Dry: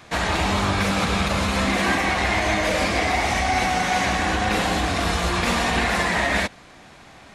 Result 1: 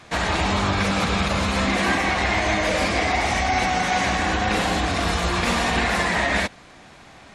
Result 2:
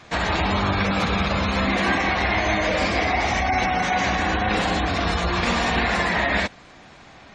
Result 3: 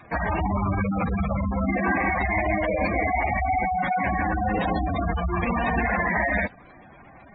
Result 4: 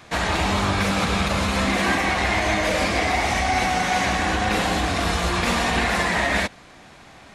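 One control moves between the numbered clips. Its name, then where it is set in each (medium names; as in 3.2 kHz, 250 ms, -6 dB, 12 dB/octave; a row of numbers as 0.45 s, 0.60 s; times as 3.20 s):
spectral gate, under each frame's peak: -35 dB, -25 dB, -10 dB, -55 dB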